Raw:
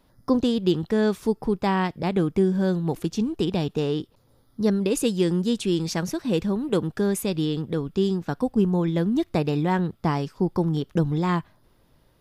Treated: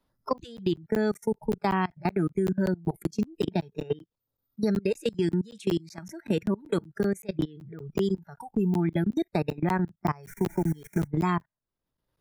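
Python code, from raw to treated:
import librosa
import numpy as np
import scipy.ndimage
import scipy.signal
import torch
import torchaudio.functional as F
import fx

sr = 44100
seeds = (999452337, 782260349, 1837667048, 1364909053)

y = fx.lowpass(x, sr, hz=11000.0, slope=12, at=(5.08, 5.59))
y = fx.high_shelf(y, sr, hz=5800.0, db=-9.0, at=(7.06, 7.8))
y = fx.dmg_noise_colour(y, sr, seeds[0], colour='pink', level_db=-42.0, at=(10.23, 11.06), fade=0.02)
y = fx.noise_reduce_blind(y, sr, reduce_db=26)
y = fx.level_steps(y, sr, step_db=24)
y = fx.peak_eq(y, sr, hz=1200.0, db=2.5, octaves=0.77)
y = fx.buffer_crackle(y, sr, first_s=0.38, period_s=0.19, block=512, kind='zero')
y = fx.band_squash(y, sr, depth_pct=70)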